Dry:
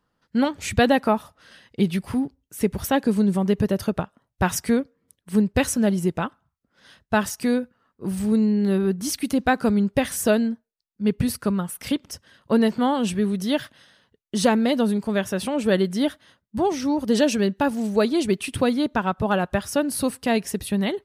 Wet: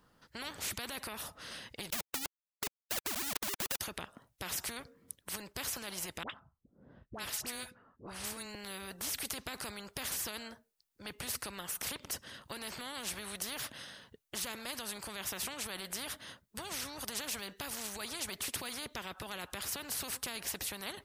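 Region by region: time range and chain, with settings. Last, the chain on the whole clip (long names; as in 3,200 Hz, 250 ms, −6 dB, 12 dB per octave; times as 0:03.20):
0:01.90–0:03.81: three sine waves on the formant tracks + centre clipping without the shift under −24 dBFS
0:06.23–0:08.55: all-pass dispersion highs, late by 68 ms, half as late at 990 Hz + low-pass that shuts in the quiet parts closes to 380 Hz, open at −21 dBFS
whole clip: high-shelf EQ 7,200 Hz +6 dB; brickwall limiter −17 dBFS; every bin compressed towards the loudest bin 4 to 1; level +2.5 dB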